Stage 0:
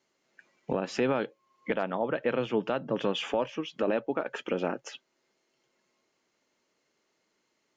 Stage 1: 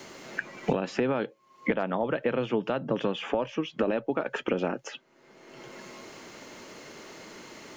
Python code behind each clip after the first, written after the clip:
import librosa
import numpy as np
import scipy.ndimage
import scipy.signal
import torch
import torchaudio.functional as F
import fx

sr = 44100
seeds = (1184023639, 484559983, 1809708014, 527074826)

y = fx.low_shelf(x, sr, hz=200.0, db=4.5)
y = fx.band_squash(y, sr, depth_pct=100)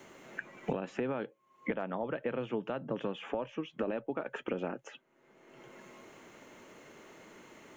y = fx.peak_eq(x, sr, hz=4800.0, db=-12.0, octaves=0.63)
y = y * librosa.db_to_amplitude(-7.5)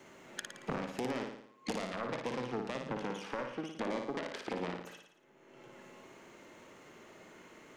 y = fx.self_delay(x, sr, depth_ms=0.59)
y = fx.room_flutter(y, sr, wall_m=9.7, rt60_s=0.68)
y = y * librosa.db_to_amplitude(-2.5)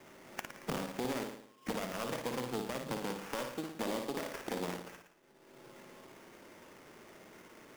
y = fx.sample_hold(x, sr, seeds[0], rate_hz=4100.0, jitter_pct=20)